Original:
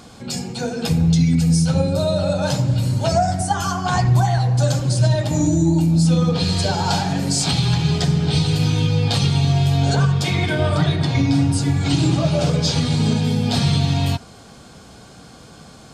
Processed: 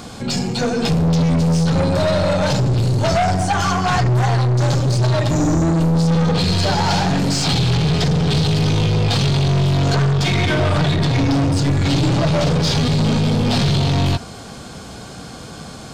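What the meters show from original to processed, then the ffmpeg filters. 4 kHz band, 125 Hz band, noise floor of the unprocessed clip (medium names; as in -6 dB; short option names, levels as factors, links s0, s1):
+2.0 dB, +1.0 dB, -43 dBFS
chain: -filter_complex "[0:a]aeval=exprs='0.422*(cos(1*acos(clip(val(0)/0.422,-1,1)))-cos(1*PI/2))+0.0944*(cos(4*acos(clip(val(0)/0.422,-1,1)))-cos(4*PI/2))':c=same,asoftclip=type=tanh:threshold=0.0891,acrossover=split=6800[s0][s1];[s1]acompressor=threshold=0.00251:ratio=4:attack=1:release=60[s2];[s0][s2]amix=inputs=2:normalize=0,volume=2.66"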